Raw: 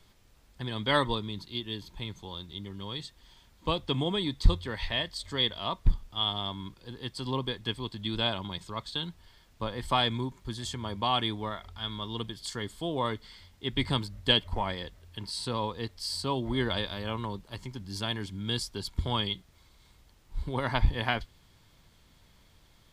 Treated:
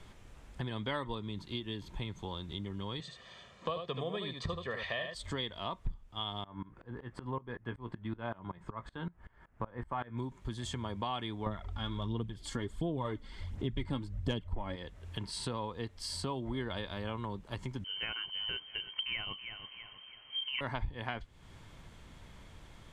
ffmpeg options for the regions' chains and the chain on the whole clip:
-filter_complex "[0:a]asettb=1/sr,asplit=3[a][b][c];[a]atrim=end=3.004[d];[b]atrim=start=3:end=5.15,asetpts=PTS-STARTPTS,afade=t=in:d=0.004:c=qsin,afade=t=out:st=2.146:d=0.004:c=qsin,highpass=190,lowpass=5.9k,aecho=1:1:1.7:0.76,atrim=end_sample=94815,aecho=1:1:77:0.447,atrim=end_sample=94815[e];[c]atrim=start=5.146[f];[d][e]acrossfade=d=0.004:c1=hsin:c2=qsin[g];[g][f]acrossfade=d=0.004:c1=qsin:c2=hsin,asettb=1/sr,asplit=3[h][i][j];[h]atrim=end=6.444[k];[i]atrim=start=6.44:end=10.18,asetpts=PTS-STARTPTS,afade=t=in:d=0.004:c=qsin,afade=t=out:st=3.736:d=0.004:c=qsin,highshelf=f=2.5k:t=q:w=1.5:g=-14,asplit=2[l][m];[m]adelay=17,volume=-11dB[n];[l][n]amix=inputs=2:normalize=0,atrim=end_sample=164934,aeval=exprs='val(0)*pow(10,-23*if(lt(mod(-5.3*n/s,1),2*abs(-5.3)/1000),1-mod(-5.3*n/s,1)/(2*abs(-5.3)/1000),(mod(-5.3*n/s,1)-2*abs(-5.3)/1000)/(1-2*abs(-5.3)/1000))/20)':c=same[o];[j]atrim=start=10.176[p];[k][o]acrossfade=d=0.004:c1=hsin:c2=qsin[q];[q][p]acrossfade=d=0.004:c1=qsin:c2=hsin,asettb=1/sr,asplit=3[r][s][t];[r]atrim=end=11.464[u];[s]atrim=start=11.46:end=14.76,asetpts=PTS-STARTPTS,afade=t=in:d=0.004:c=qsin,afade=t=out:st=3.296:d=0.004:c=qsin,lowshelf=f=460:g=9,aphaser=in_gain=1:out_gain=1:delay=3.7:decay=0.48:speed=1.4:type=sinusoidal,volume=7dB,asoftclip=hard,volume=-7dB[v];[t]atrim=start=14.756[w];[u][v]acrossfade=d=0.004:c1=hsin:c2=qsin[x];[x][w]acrossfade=d=0.004:c1=qsin:c2=hsin,asettb=1/sr,asplit=3[y][z][aa];[y]atrim=end=17.844[ab];[z]atrim=start=17.84:end=20.61,asetpts=PTS-STARTPTS,afade=t=in:d=0.004:c=qsin,afade=t=out:st=2.766:d=0.004:c=qsin,lowpass=f=2.7k:t=q:w=0.5098,lowpass=f=2.7k:t=q:w=0.6013,lowpass=f=2.7k:t=q:w=0.9,lowpass=f=2.7k:t=q:w=2.563,afreqshift=-3200,aecho=1:1:326|652|978:0.112|0.0449|0.018,atrim=end_sample=122157[ac];[aa]atrim=start=20.606[ad];[ab][ac]acrossfade=d=0.004:c1=hsin:c2=qsin[ae];[ae][ad]acrossfade=d=0.004:c1=qsin:c2=hsin,lowpass=7.6k,equalizer=f=4.6k:t=o:w=0.87:g=-9.5,acompressor=threshold=-45dB:ratio=4,volume=8dB"

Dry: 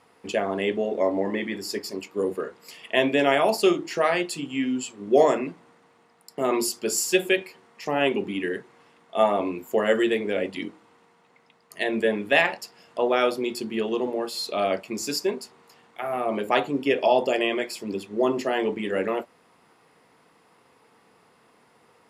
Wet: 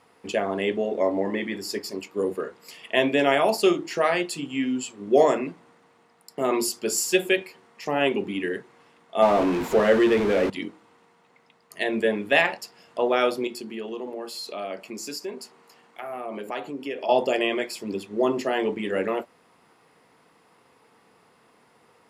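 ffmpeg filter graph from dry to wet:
-filter_complex "[0:a]asettb=1/sr,asplit=3[a][b][c];[a]atrim=end=9.224[d];[b]atrim=start=9.22:end=10.5,asetpts=PTS-STARTPTS,afade=t=in:d=0.004:c=qsin,afade=t=out:st=1.276:d=0.004:c=qsin,aeval=exprs='val(0)+0.5*0.075*sgn(val(0))':c=same,aemphasis=mode=reproduction:type=75fm[e];[c]atrim=start=10.496[f];[d][e]acrossfade=d=0.004:c1=hsin:c2=qsin[g];[g][f]acrossfade=d=0.004:c1=qsin:c2=hsin,asettb=1/sr,asplit=3[h][i][j];[h]atrim=end=13.474[k];[i]atrim=start=13.47:end=17.09,asetpts=PTS-STARTPTS,afade=t=in:d=0.004:c=qsin,afade=t=out:st=3.616:d=0.004:c=qsin,highpass=160,acompressor=threshold=-35dB:ratio=2:attack=3.2:release=140:knee=1:detection=peak,bandreject=f=3.6k:w=18[l];[j]atrim=start=17.086[m];[k][l]acrossfade=d=0.004:c1=hsin:c2=qsin[n];[n][m]acrossfade=d=0.004:c1=qsin:c2=hsin"

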